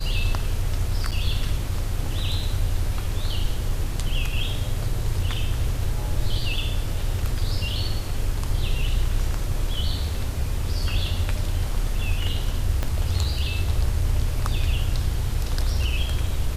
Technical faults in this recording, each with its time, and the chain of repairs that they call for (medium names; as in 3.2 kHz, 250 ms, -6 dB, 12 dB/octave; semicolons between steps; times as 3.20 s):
1.11–1.12 s: dropout 7.3 ms
12.83 s: pop -12 dBFS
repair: de-click; interpolate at 1.11 s, 7.3 ms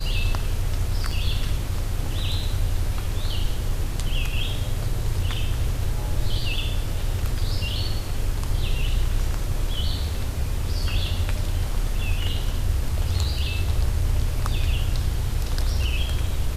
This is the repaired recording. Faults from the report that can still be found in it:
12.83 s: pop